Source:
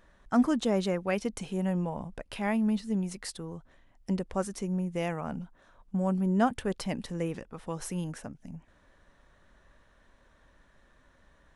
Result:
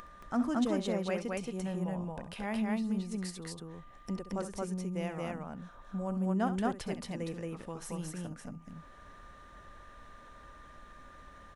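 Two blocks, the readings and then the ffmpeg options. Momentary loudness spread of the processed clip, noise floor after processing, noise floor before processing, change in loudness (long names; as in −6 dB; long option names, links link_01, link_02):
22 LU, −54 dBFS, −63 dBFS, −4.5 dB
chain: -af "aeval=exprs='val(0)+0.00178*sin(2*PI*1200*n/s)':channel_layout=same,acompressor=mode=upward:threshold=-33dB:ratio=2.5,aecho=1:1:67.06|224.5:0.251|0.891,volume=-7dB"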